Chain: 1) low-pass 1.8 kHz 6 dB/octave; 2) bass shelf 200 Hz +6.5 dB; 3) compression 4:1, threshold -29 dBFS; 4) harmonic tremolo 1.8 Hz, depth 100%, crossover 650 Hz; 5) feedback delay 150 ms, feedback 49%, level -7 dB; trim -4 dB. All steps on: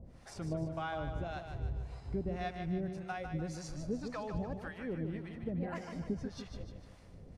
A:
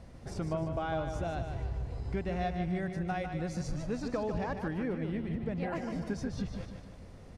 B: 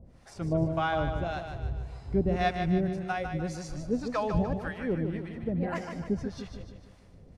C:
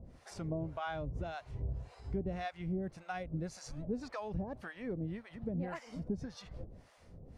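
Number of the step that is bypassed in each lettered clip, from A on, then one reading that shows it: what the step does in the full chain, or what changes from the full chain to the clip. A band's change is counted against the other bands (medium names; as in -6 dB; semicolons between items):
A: 4, momentary loudness spread change -4 LU; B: 3, mean gain reduction 5.5 dB; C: 5, echo-to-direct -6.0 dB to none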